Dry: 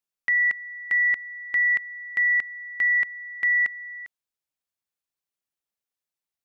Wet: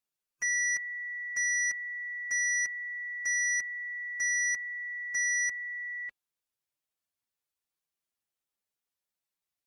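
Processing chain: sine folder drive 5 dB, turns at -17 dBFS; time stretch by phase-locked vocoder 1.5×; trim -9 dB

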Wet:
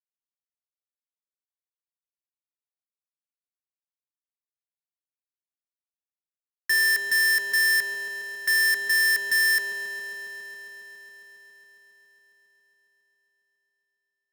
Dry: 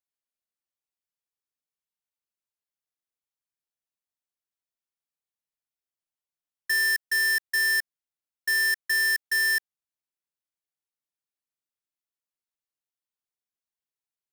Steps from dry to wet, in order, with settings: bit crusher 11-bit; feedback echo behind a band-pass 137 ms, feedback 59%, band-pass 450 Hz, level -12.5 dB; power-law waveshaper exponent 0.35; trim +2 dB

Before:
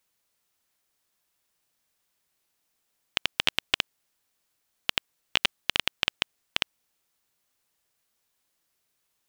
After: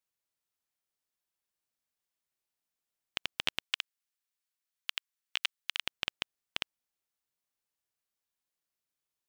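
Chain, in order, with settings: 3.62–5.82 s: high-pass 1.2 kHz 12 dB/octave; upward expansion 1.5:1, over -36 dBFS; trim -7 dB

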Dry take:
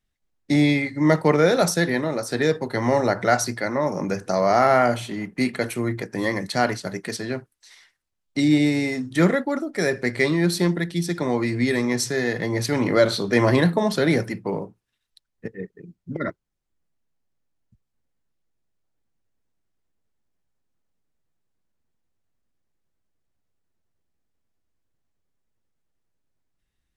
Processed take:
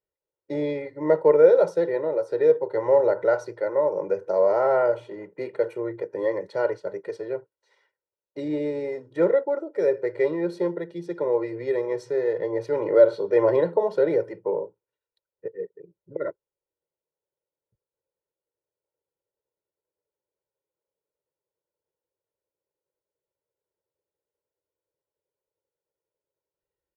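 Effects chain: band-pass filter 530 Hz, Q 1.9; comb 2.1 ms, depth 92%

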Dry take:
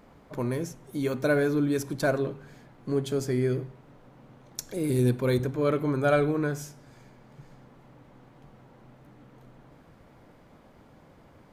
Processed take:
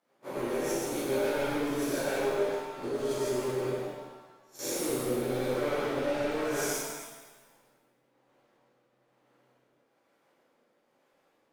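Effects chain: spectral blur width 205 ms; gate -48 dBFS, range -23 dB; high-pass 380 Hz 12 dB/octave; treble shelf 6.1 kHz +5 dB; in parallel at -3 dB: compressor with a negative ratio -43 dBFS, ratio -1; on the sum: hard clipper -32.5 dBFS, distortion -8 dB; rotary cabinet horn 7 Hz, later 1.1 Hz, at 3.15 s; crackling interface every 0.16 s, samples 1024, zero, from 0.40 s; pitch-shifted reverb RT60 1.2 s, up +7 st, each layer -8 dB, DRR -10.5 dB; trim -4 dB

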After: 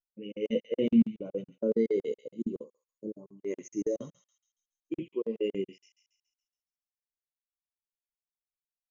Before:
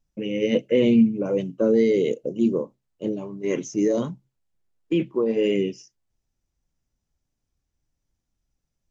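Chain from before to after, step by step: bass shelf 190 Hz -2.5 dB; thinning echo 68 ms, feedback 81%, high-pass 1.1 kHz, level -6 dB; spectral selection erased 2.64–3.38 s, 1.6–4.2 kHz; treble shelf 3.2 kHz +9.5 dB; band-stop 5.9 kHz, Q 19; crackling interface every 0.14 s, samples 2048, zero, from 0.32 s; spectral contrast expander 1.5:1; trim -5.5 dB

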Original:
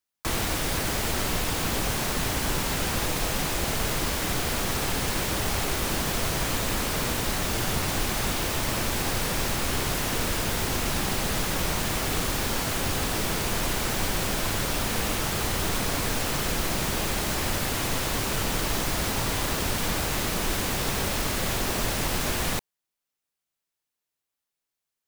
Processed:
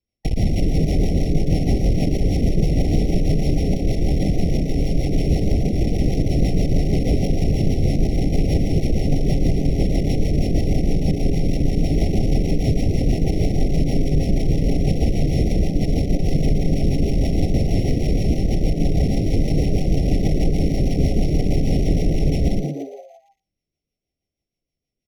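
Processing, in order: sorted samples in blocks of 8 samples; RIAA curve playback; peak limiter -13 dBFS, peak gain reduction 11 dB; one-sided clip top -21 dBFS, bottom -16 dBFS; on a send: frequency-shifting echo 115 ms, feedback 56%, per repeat +130 Hz, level -8 dB; on the sum: rotary cabinet horn 6.3 Hz; brick-wall FIR band-stop 810–1900 Hz; trim +6 dB

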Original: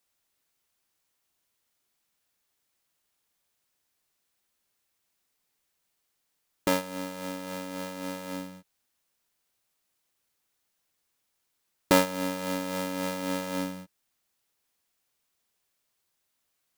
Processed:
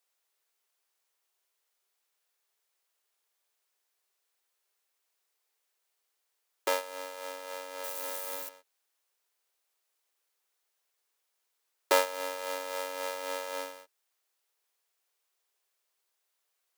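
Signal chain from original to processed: 7.84–8.49 s: zero-crossing glitches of -28 dBFS; elliptic high-pass 390 Hz, stop band 80 dB; trim -1.5 dB

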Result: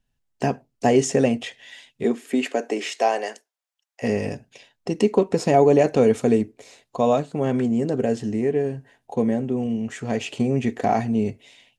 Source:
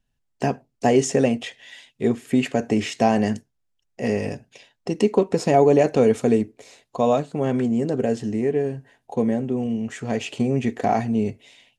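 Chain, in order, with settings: 2.03–4.02 s: high-pass 200 Hz -> 770 Hz 24 dB/octave

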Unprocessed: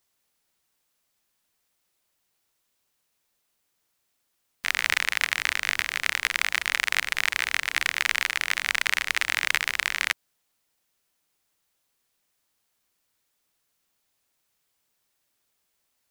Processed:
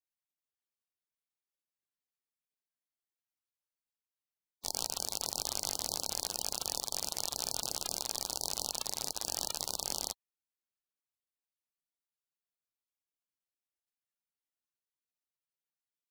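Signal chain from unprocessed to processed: level held to a coarse grid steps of 17 dB; spectral gate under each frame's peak -15 dB weak; trim +7 dB

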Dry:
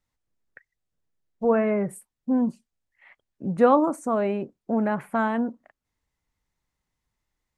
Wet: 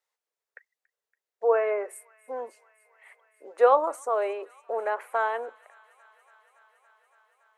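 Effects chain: elliptic high-pass 430 Hz, stop band 60 dB; feedback echo behind a high-pass 282 ms, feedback 83%, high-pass 1.8 kHz, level -20.5 dB

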